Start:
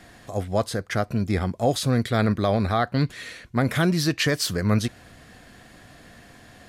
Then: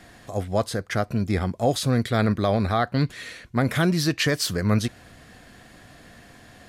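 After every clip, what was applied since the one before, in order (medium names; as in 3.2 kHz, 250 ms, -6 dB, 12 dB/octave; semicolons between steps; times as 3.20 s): no audible change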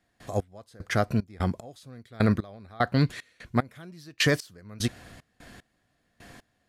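trance gate ".x..xx.x.." 75 bpm -24 dB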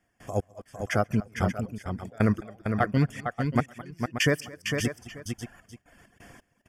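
Butterworth band-stop 4 kHz, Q 2.8; on a send: multi-tap echo 135/214/455/581/883 ms -19.5/-14/-6/-9.5/-19 dB; on the sum: reverb removal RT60 0.77 s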